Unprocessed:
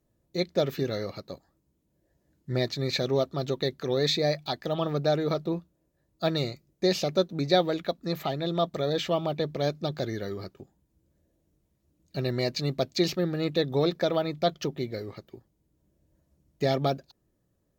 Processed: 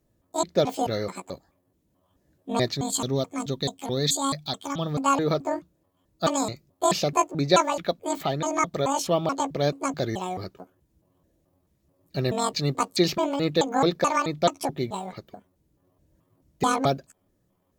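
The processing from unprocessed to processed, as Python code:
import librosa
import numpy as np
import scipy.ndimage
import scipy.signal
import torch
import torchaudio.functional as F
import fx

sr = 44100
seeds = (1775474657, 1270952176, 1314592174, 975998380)

y = fx.pitch_trill(x, sr, semitones=10.5, every_ms=216)
y = fx.spec_box(y, sr, start_s=2.81, length_s=2.24, low_hz=280.0, high_hz=3100.0, gain_db=-6)
y = y * librosa.db_to_amplitude(3.5)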